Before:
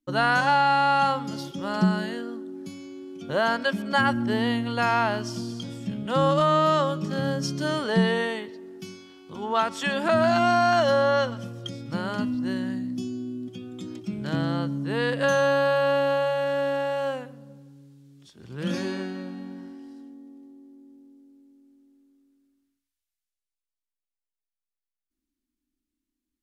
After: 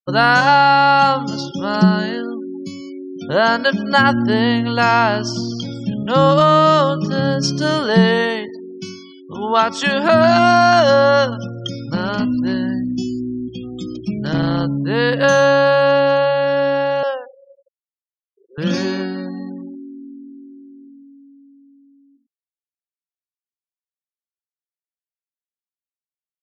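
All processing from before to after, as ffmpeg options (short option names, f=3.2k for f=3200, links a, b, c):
-filter_complex "[0:a]asettb=1/sr,asplit=3[a][b][c];[a]atrim=end=11.954[d];[b]atrim=start=11.95:end=14.76,asetpts=PTS-STARTPTS,afade=t=in:d=0.004:c=qsin,afade=t=out:st=2.806:d=0.004:c=qsin,aeval=exprs='val(0)+0.00158*(sin(2*PI*60*n/s)+sin(2*PI*2*60*n/s)/2+sin(2*PI*3*60*n/s)/3+sin(2*PI*4*60*n/s)/4+sin(2*PI*5*60*n/s)/5)':c=same,asoftclip=type=hard:threshold=-22dB[e];[c]atrim=start=14.756[f];[d][e]acrossfade=d=0.004:c1=hsin:c2=qsin[g];[g][f]acrossfade=d=0.004:c1=qsin:c2=hsin,asettb=1/sr,asplit=3[h][i][j];[h]atrim=end=17.034[k];[i]atrim=start=17.03:end=18.58,asetpts=PTS-STARTPTS,afade=t=in:d=0.004:c=qsin,afade=t=out:st=1.546:d=0.004:c=qsin,highpass=f=470:w=0.5412,highpass=f=470:w=1.3066,adynamicsmooth=sensitivity=4:basefreq=1.4k[l];[j]atrim=start=18.576[m];[k][l]acrossfade=d=0.004:c1=hsin:c2=qsin[n];[n][m]acrossfade=d=0.004:c1=qsin:c2=hsin,equalizer=f=5.3k:t=o:w=0.84:g=7.5,afftfilt=real='re*gte(hypot(re,im),0.00794)':imag='im*gte(hypot(re,im),0.00794)':win_size=1024:overlap=0.75,highshelf=f=7.1k:g=-11,volume=9dB"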